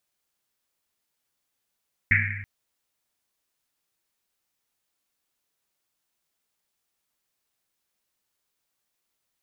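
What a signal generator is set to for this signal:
drum after Risset length 0.33 s, pitch 100 Hz, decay 1.59 s, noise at 2,000 Hz, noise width 670 Hz, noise 60%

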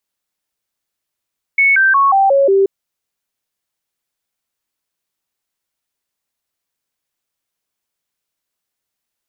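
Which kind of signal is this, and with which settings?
stepped sweep 2,210 Hz down, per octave 2, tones 6, 0.18 s, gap 0.00 s −8 dBFS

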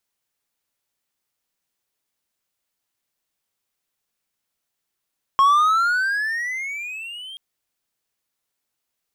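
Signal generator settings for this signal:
pitch glide with a swell triangle, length 1.98 s, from 1,080 Hz, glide +19 semitones, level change −23 dB, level −9 dB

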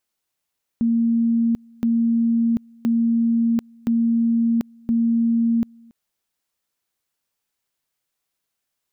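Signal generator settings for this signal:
tone at two levels in turn 231 Hz −15.5 dBFS, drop 29 dB, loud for 0.74 s, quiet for 0.28 s, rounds 5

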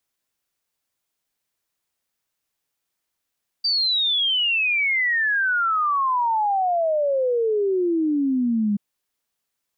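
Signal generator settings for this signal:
exponential sine sweep 4,700 Hz → 200 Hz 5.13 s −18 dBFS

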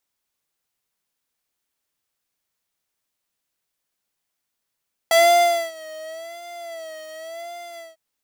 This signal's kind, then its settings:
subtractive patch with vibrato E5, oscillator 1 square, oscillator 2 saw, interval 0 semitones, detune 4 cents, oscillator 2 level −6 dB, sub −23.5 dB, noise −19.5 dB, filter highpass, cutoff 240 Hz, Q 1.1, filter envelope 2 octaves, filter decay 0.11 s, filter sustain 25%, attack 2.8 ms, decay 0.60 s, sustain −24 dB, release 0.18 s, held 2.67 s, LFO 0.91 Hz, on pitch 90 cents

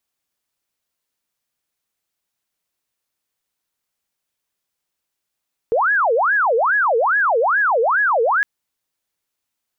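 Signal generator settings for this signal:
siren wail 446–1,690 Hz 2.4 per second sine −13.5 dBFS 2.71 s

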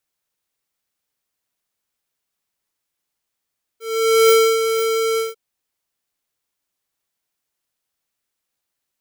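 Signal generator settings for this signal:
note with an ADSR envelope square 449 Hz, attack 493 ms, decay 288 ms, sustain −8 dB, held 1.38 s, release 167 ms −11 dBFS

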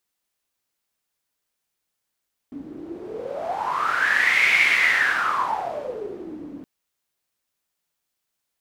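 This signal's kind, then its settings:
wind from filtered noise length 4.12 s, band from 280 Hz, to 2,200 Hz, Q 10, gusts 1, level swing 19.5 dB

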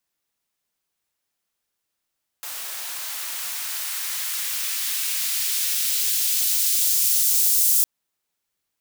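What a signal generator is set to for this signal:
filter sweep on noise white, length 5.41 s highpass, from 660 Hz, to 7,300 Hz, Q 0.74, exponential, gain ramp +17 dB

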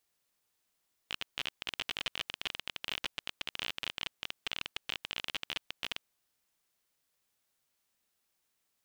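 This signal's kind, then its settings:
Geiger counter clicks 30 per second −18 dBFS 4.90 s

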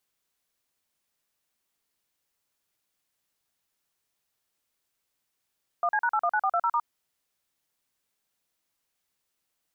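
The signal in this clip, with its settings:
touch tones "1C#819420*", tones 60 ms, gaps 41 ms, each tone −24.5 dBFS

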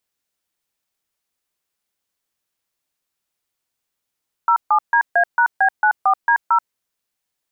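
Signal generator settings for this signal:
touch tones "07DA#B94D0", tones 82 ms, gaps 143 ms, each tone −14 dBFS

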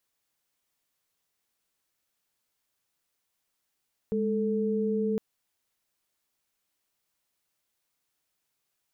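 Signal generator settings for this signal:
held notes G#3/A4 sine, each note −27.5 dBFS 1.06 s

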